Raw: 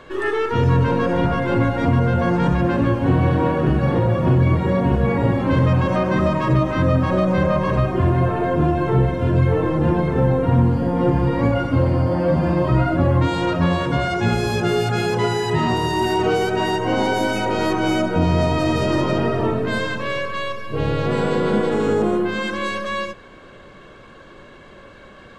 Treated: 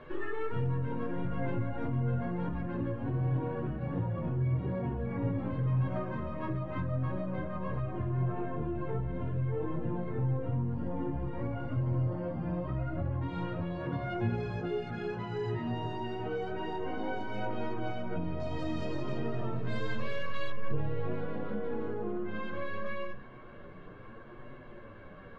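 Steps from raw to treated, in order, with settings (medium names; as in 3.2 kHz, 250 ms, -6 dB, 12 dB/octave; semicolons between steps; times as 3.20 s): compression 10:1, threshold -26 dBFS, peak gain reduction 15 dB; low-pass 2.6 kHz 12 dB/octave, from 18.40 s 6.1 kHz, from 20.50 s 2.1 kHz; reverberation RT60 0.70 s, pre-delay 7 ms, DRR 15.5 dB; chorus voices 4, 0.26 Hz, delay 13 ms, depth 4.8 ms; bass shelf 280 Hz +4.5 dB; trim -5 dB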